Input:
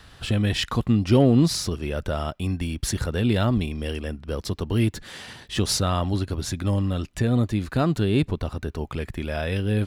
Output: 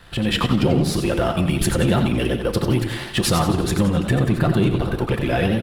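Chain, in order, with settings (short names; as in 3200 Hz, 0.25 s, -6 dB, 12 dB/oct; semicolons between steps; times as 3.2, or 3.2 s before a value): bell 6000 Hz -9 dB 0.84 oct; comb 5.8 ms, depth 63%; compressor, threshold -22 dBFS, peak gain reduction 11 dB; sample leveller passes 1; AGC gain up to 5.5 dB; granular stretch 0.57×, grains 27 ms; feedback echo 84 ms, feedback 59%, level -12.5 dB; reverb RT60 0.50 s, pre-delay 8 ms, DRR 13 dB; warbling echo 95 ms, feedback 33%, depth 189 cents, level -9 dB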